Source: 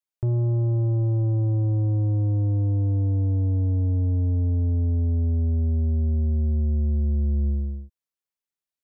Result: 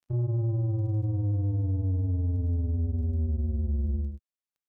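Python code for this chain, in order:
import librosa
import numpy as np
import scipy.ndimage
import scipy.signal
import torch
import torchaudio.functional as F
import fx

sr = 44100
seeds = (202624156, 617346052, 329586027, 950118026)

y = fx.stretch_vocoder(x, sr, factor=0.53)
y = fx.dmg_crackle(y, sr, seeds[0], per_s=11.0, level_db=-47.0)
y = fx.granulator(y, sr, seeds[1], grain_ms=100.0, per_s=20.0, spray_ms=24.0, spread_st=0)
y = y * 10.0 ** (-4.0 / 20.0)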